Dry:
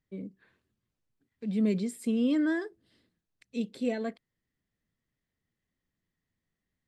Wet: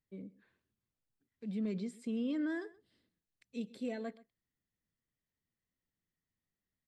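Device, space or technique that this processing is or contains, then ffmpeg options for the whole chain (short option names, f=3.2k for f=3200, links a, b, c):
clipper into limiter: -filter_complex "[0:a]asoftclip=type=hard:threshold=-19.5dB,alimiter=limit=-22dB:level=0:latency=1,asettb=1/sr,asplit=3[a][b][c];[a]atrim=end=1.554[d];[b]atrim=start=1.55:end=2.5,asetpts=PTS-STARTPTS,afade=t=in:d=0.004:c=qsin,afade=t=out:st=0.946:d=0.004:c=qsin,lowpass=6.5k[e];[c]atrim=start=2.496[f];[d][e]acrossfade=d=0.004:c1=hsin:c2=qsin[g];[g][f]acrossfade=d=0.004:c1=qsin:c2=hsin,asplit=2[h][i];[i]adelay=128.3,volume=-20dB,highshelf=f=4k:g=-2.89[j];[h][j]amix=inputs=2:normalize=0,volume=-7.5dB"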